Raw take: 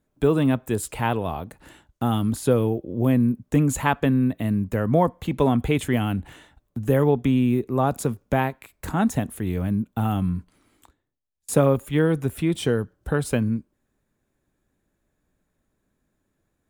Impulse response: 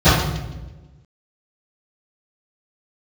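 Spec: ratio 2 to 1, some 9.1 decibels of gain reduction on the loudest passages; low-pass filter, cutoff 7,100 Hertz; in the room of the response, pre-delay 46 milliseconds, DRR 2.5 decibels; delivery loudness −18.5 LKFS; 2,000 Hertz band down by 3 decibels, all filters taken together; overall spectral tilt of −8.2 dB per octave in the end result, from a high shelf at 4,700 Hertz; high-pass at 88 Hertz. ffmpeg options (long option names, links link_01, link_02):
-filter_complex "[0:a]highpass=88,lowpass=7100,equalizer=frequency=2000:width_type=o:gain=-4.5,highshelf=frequency=4700:gain=3,acompressor=threshold=-31dB:ratio=2,asplit=2[link_01][link_02];[1:a]atrim=start_sample=2205,adelay=46[link_03];[link_02][link_03]afir=irnorm=-1:irlink=0,volume=-29.5dB[link_04];[link_01][link_04]amix=inputs=2:normalize=0,volume=5dB"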